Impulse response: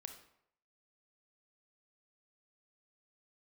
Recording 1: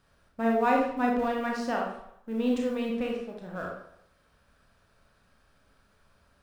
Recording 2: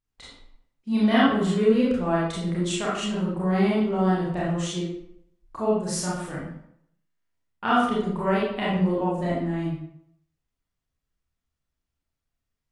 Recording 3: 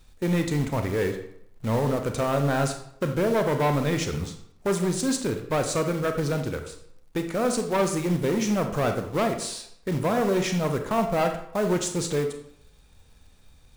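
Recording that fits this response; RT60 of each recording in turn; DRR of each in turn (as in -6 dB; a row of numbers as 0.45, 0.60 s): 3; 0.70, 0.70, 0.70 s; -1.0, -7.5, 6.0 dB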